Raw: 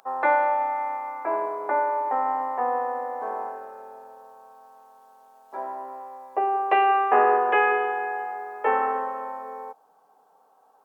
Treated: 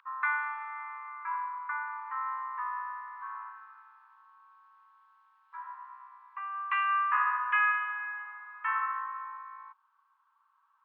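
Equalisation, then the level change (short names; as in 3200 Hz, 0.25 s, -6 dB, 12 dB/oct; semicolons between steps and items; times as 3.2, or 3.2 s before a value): steep high-pass 1000 Hz 96 dB/oct; air absorption 440 m; +1.5 dB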